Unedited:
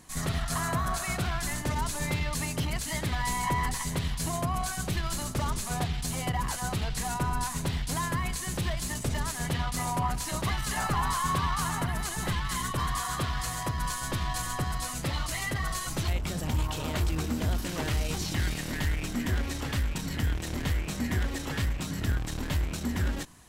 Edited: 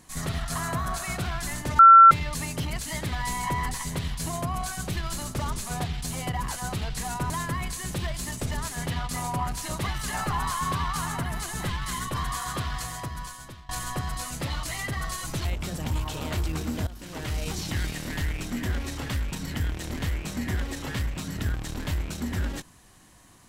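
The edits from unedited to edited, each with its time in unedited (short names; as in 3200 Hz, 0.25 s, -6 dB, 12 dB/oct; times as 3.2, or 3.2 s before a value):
1.79–2.11 bleep 1350 Hz -7.5 dBFS
7.3–7.93 cut
13.37–14.32 fade out, to -23.5 dB
17.5–18.08 fade in, from -16 dB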